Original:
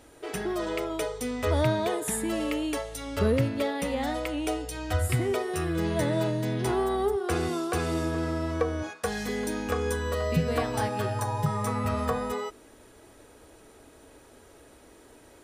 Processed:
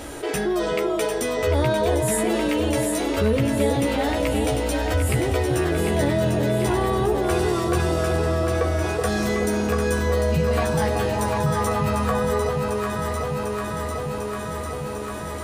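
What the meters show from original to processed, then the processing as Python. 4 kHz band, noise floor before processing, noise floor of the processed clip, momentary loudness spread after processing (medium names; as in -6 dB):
+6.5 dB, -54 dBFS, -30 dBFS, 7 LU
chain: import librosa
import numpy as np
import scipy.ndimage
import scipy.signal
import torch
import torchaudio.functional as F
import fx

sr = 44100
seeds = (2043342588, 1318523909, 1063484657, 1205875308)

y = fx.doubler(x, sr, ms=14.0, db=-4)
y = fx.echo_alternate(y, sr, ms=374, hz=870.0, feedback_pct=80, wet_db=-4.5)
y = fx.env_flatten(y, sr, amount_pct=50)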